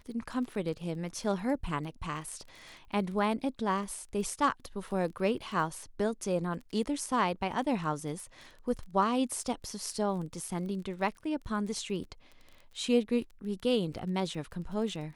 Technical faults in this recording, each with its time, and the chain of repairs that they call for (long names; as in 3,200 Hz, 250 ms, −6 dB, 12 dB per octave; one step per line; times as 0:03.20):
surface crackle 23 per second −41 dBFS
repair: click removal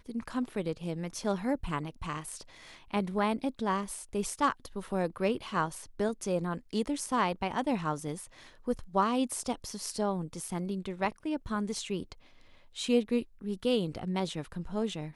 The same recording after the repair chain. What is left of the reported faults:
none of them is left